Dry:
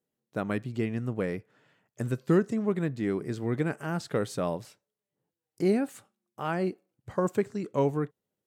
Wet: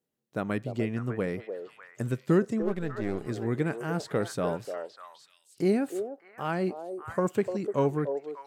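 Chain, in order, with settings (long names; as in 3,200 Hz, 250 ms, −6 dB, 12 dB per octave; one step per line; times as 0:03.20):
0:02.62–0:03.27: gain on one half-wave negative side −12 dB
echo through a band-pass that steps 298 ms, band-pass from 530 Hz, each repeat 1.4 octaves, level −4 dB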